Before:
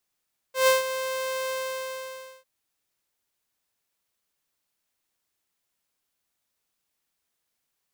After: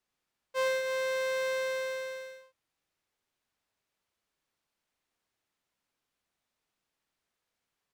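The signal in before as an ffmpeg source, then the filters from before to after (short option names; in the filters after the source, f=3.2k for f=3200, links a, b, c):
-f lavfi -i "aevalsrc='0.224*(2*mod(523*t,1)-1)':d=1.901:s=44100,afade=t=in:d=0.135,afade=t=out:st=0.135:d=0.149:silence=0.251,afade=t=out:st=0.96:d=0.941"
-filter_complex "[0:a]aemphasis=mode=reproduction:type=50kf,acompressor=threshold=-27dB:ratio=10,asplit=2[a][b];[b]adelay=87.46,volume=-6dB,highshelf=f=4k:g=-1.97[c];[a][c]amix=inputs=2:normalize=0"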